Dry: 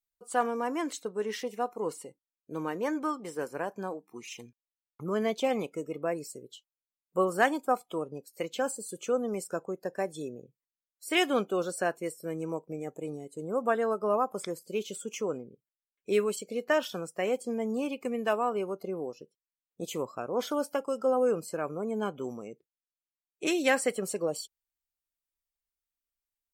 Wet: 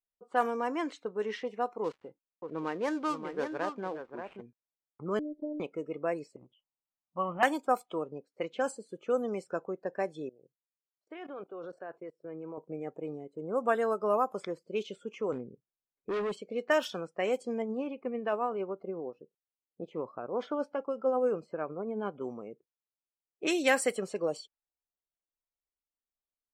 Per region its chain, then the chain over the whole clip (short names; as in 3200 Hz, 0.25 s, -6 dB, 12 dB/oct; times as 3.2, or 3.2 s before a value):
1.84–4.41 switching dead time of 0.086 ms + echo 0.581 s -7 dB
5.19–5.6 inverse Chebyshev low-pass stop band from 1100 Hz, stop band 50 dB + robotiser 299 Hz + upward compressor, threshold -38 dBFS
6.36–7.43 steep low-pass 3300 Hz 96 dB/oct + transient shaper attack 0 dB, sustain +6 dB + fixed phaser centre 1600 Hz, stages 6
10.29–12.58 bell 220 Hz -11.5 dB 0.36 oct + level quantiser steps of 20 dB + BPF 130–5900 Hz
15.32–16.37 low shelf 260 Hz +9 dB + hard clip -29 dBFS
17.62–22.21 LPF 1600 Hz 6 dB/oct + tremolo 11 Hz, depth 31%
whole clip: low-pass opened by the level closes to 890 Hz, open at -23 dBFS; low shelf 160 Hz -7 dB